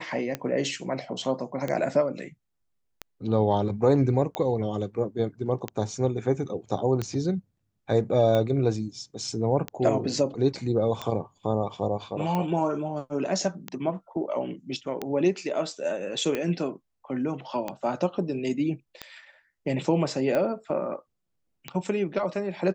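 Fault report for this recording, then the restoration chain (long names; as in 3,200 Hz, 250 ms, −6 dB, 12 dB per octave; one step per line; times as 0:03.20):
scratch tick 45 rpm −15 dBFS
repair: click removal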